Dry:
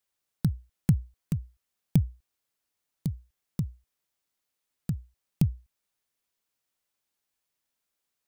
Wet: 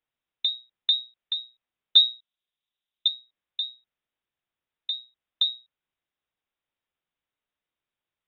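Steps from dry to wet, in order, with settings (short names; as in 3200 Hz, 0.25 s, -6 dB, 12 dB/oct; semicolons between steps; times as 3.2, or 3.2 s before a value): 1.96–3.08 tilt shelf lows +8 dB; treble ducked by the level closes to 3000 Hz, closed at -21.5 dBFS; inverted band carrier 3800 Hz; gain -1.5 dB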